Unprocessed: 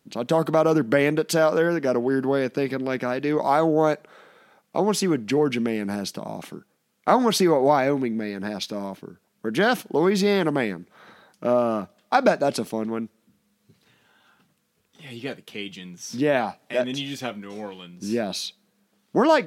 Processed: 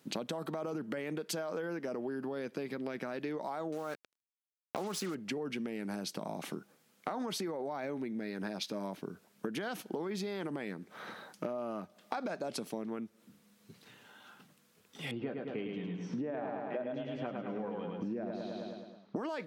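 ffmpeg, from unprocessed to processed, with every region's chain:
ffmpeg -i in.wav -filter_complex "[0:a]asettb=1/sr,asplit=3[link_01][link_02][link_03];[link_01]atrim=end=3.724[link_04];[link_02]atrim=start=3.72:end=5.15,asetpts=PTS-STARTPTS,afade=type=in:duration=0.004:curve=qsin,afade=type=out:start_time=1.426:duration=0.004:curve=qsin,equalizer=frequency=1300:width_type=o:width=0.8:gain=8,bandreject=frequency=980:width=10,acrusher=bits=4:mix=0:aa=0.5[link_05];[link_03]atrim=start=5.146[link_06];[link_04][link_05]acrossfade=duration=0.004:curve1=hsin:curve2=qsin[link_07];[link_07][link_06]acrossfade=duration=0.004:curve1=qsin:curve2=hsin,asettb=1/sr,asplit=3[link_08][link_09][link_10];[link_08]atrim=end=15.114[link_11];[link_09]atrim=start=15.11:end=19.16,asetpts=PTS-STARTPTS,afade=type=in:duration=0.004:curve=qsin,afade=type=out:start_time=4.046:duration=0.004:curve=qsin,lowpass=1300,aecho=1:1:106|212|318|424|530|636|742:0.596|0.328|0.18|0.0991|0.0545|0.03|0.0165,atrim=end_sample=178605[link_12];[link_10]atrim=start=19.156[link_13];[link_11][link_12]acrossfade=duration=0.004:curve1=hsin:curve2=qsin[link_14];[link_14][link_13]acrossfade=duration=0.004:curve1=qsin:curve2=hsin,alimiter=limit=-16dB:level=0:latency=1:release=28,acompressor=threshold=-37dB:ratio=16,highpass=130,volume=3dB" out.wav

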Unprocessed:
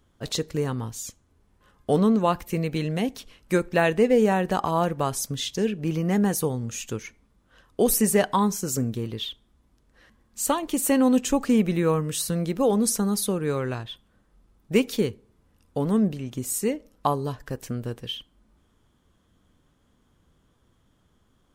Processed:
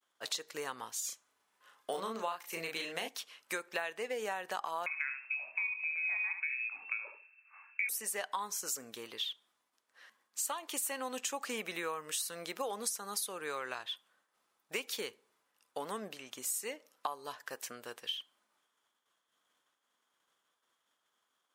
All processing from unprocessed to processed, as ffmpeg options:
ffmpeg -i in.wav -filter_complex "[0:a]asettb=1/sr,asplit=3[link_01][link_02][link_03];[link_01]atrim=end=1.004[link_04];[link_02]atrim=start=1:end=3.08,asetpts=PTS-STARTPTS,afade=type=in:duration=0.004:curve=qsin,afade=type=out:start_time=2.076:duration=0.004:curve=qsin,deesser=0.65,asplit=2[link_05][link_06];[link_06]adelay=36,volume=-4dB[link_07];[link_05][link_07]amix=inputs=2:normalize=0,atrim=end_sample=91728[link_08];[link_03]atrim=start=3.076[link_09];[link_04][link_08]acrossfade=duration=0.004:curve1=hsin:curve2=qsin[link_10];[link_10][link_09]acrossfade=duration=0.004:curve1=qsin:curve2=hsin,asettb=1/sr,asplit=3[link_11][link_12][link_13];[link_11]atrim=end=4.864[link_14];[link_12]atrim=start=4.86:end=7.89,asetpts=PTS-STARTPTS,afade=type=in:duration=0.004:curve=qsin,afade=type=out:start_time=3.026:duration=0.004:curve=qsin,lowpass=frequency=2300:width_type=q:width=0.5098,lowpass=frequency=2300:width_type=q:width=0.6013,lowpass=frequency=2300:width_type=q:width=0.9,lowpass=frequency=2300:width_type=q:width=2.563,afreqshift=-2700,asplit=2[link_15][link_16];[link_16]adelay=23,volume=-11dB[link_17];[link_15][link_17]amix=inputs=2:normalize=0,atrim=end_sample=133623,aecho=1:1:71|142|213:0.335|0.0603|0.0109,atrim=end_sample=133623[link_18];[link_13]atrim=start=7.886[link_19];[link_14][link_18]acrossfade=duration=0.004:curve1=hsin:curve2=qsin[link_20];[link_20][link_19]acrossfade=duration=0.004:curve1=qsin:curve2=hsin,agate=range=-33dB:threshold=-58dB:ratio=3:detection=peak,highpass=900,acompressor=threshold=-34dB:ratio=6" out.wav

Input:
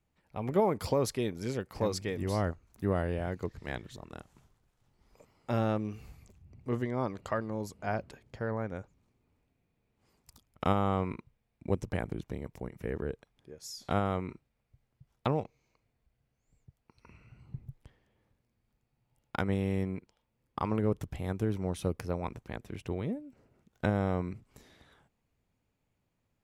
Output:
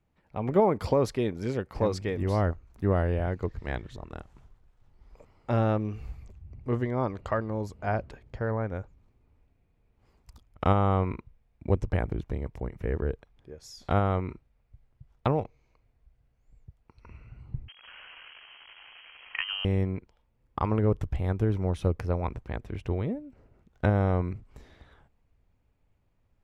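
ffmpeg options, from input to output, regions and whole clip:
ffmpeg -i in.wav -filter_complex "[0:a]asettb=1/sr,asplit=3[link_01][link_02][link_03];[link_01]atrim=end=17.684[link_04];[link_02]atrim=start=17.68:end=19.65,asetpts=PTS-STARTPTS,afade=type=in:duration=0.004:curve=qsin,afade=type=out:start_time=1.966:duration=0.004:curve=qsin,aeval=exprs='val(0)+0.5*0.01*sgn(val(0))':channel_layout=same,acrossover=split=260 2500:gain=0.2 1 0.0794[link_05][link_06][link_07];[link_05][link_06][link_07]amix=inputs=3:normalize=0,lowpass=frequency=2800:width_type=q:width=0.5098,lowpass=frequency=2800:width_type=q:width=0.6013,lowpass=frequency=2800:width_type=q:width=0.9,lowpass=frequency=2800:width_type=q:width=2.563,afreqshift=-3300[link_08];[link_03]atrim=start=19.646[link_09];[link_04][link_08]acrossfade=duration=0.004:curve1=hsin:curve2=qsin[link_10];[link_10][link_09]acrossfade=duration=0.004:curve1=qsin:curve2=hsin,lowpass=frequency=2200:poles=1,asubboost=boost=3.5:cutoff=81,volume=5dB" out.wav

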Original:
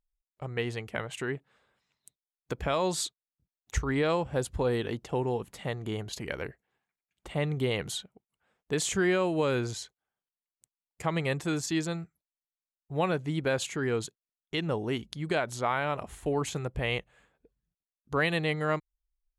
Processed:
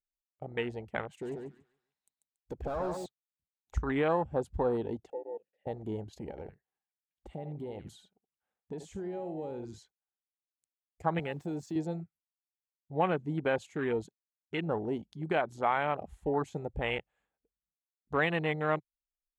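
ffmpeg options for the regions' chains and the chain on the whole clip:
ffmpeg -i in.wav -filter_complex "[0:a]asettb=1/sr,asplit=3[link_01][link_02][link_03];[link_01]atrim=end=1.114[link_04];[link_02]atrim=start=1.11:end=3.06,asetpts=PTS-STARTPTS,afade=type=in:duration=0.004:curve=qsin,afade=type=out:start_time=1.946:duration=0.004:curve=qsin,highshelf=frequency=8600:gain=4.5,volume=31dB,asoftclip=hard,volume=-31dB,aecho=1:1:141|282|423|564:0.596|0.179|0.0536|0.0161,atrim=end_sample=85995[link_05];[link_03]atrim=start=3.056[link_06];[link_04][link_05]acrossfade=duration=0.004:curve1=hsin:curve2=qsin[link_07];[link_07][link_06]acrossfade=duration=0.004:curve1=qsin:curve2=hsin,asettb=1/sr,asplit=3[link_08][link_09][link_10];[link_08]atrim=end=5.104[link_11];[link_09]atrim=start=5.1:end=5.67,asetpts=PTS-STARTPTS,afade=type=in:duration=0.004:curve=qsin,afade=type=out:start_time=0.566:duration=0.004:curve=qsin,asplit=3[link_12][link_13][link_14];[link_12]bandpass=frequency=530:width_type=q:width=8,volume=0dB[link_15];[link_13]bandpass=frequency=1840:width_type=q:width=8,volume=-6dB[link_16];[link_14]bandpass=frequency=2480:width_type=q:width=8,volume=-9dB[link_17];[link_15][link_16][link_17]amix=inputs=3:normalize=0,highshelf=frequency=2700:gain=-11[link_18];[link_10]atrim=start=5.666[link_19];[link_11][link_18]acrossfade=duration=0.004:curve1=hsin:curve2=qsin[link_20];[link_20][link_19]acrossfade=duration=0.004:curve1=qsin:curve2=hsin,asettb=1/sr,asplit=3[link_21][link_22][link_23];[link_21]atrim=end=6.304[link_24];[link_22]atrim=start=6.3:end=9.78,asetpts=PTS-STARTPTS,afade=type=in:duration=0.004:curve=qsin,afade=type=out:start_time=3.476:duration=0.004:curve=qsin,aecho=1:1:73:0.266,atrim=end_sample=153468,acompressor=threshold=-34dB:ratio=4:attack=3.2:release=140:knee=1:detection=peak[link_25];[link_23]atrim=start=9.776[link_26];[link_24][link_25]acrossfade=duration=0.004:curve1=hsin:curve2=qsin[link_27];[link_27][link_26]acrossfade=duration=0.004:curve1=qsin:curve2=hsin,asettb=1/sr,asplit=3[link_28][link_29][link_30];[link_28]atrim=end=11.194[link_31];[link_29]atrim=start=11.19:end=11.76,asetpts=PTS-STARTPTS,afade=type=in:duration=0.004:curve=qsin,afade=type=out:start_time=0.566:duration=0.004:curve=qsin,highpass=frequency=88:width=0.5412,highpass=frequency=88:width=1.3066,acompressor=threshold=-32dB:ratio=2:attack=3.2:release=140:knee=1:detection=peak,aeval=exprs='val(0)*gte(abs(val(0)),0.00447)':channel_layout=same[link_32];[link_30]atrim=start=11.756[link_33];[link_31][link_32]acrossfade=duration=0.004:curve1=hsin:curve2=qsin[link_34];[link_34][link_33]acrossfade=duration=0.004:curve1=qsin:curve2=hsin,afwtdn=0.02,equalizer=frequency=125:width_type=o:width=0.33:gain=-8,equalizer=frequency=800:width_type=o:width=0.33:gain=6,equalizer=frequency=10000:width_type=o:width=0.33:gain=-4,volume=-1.5dB" out.wav

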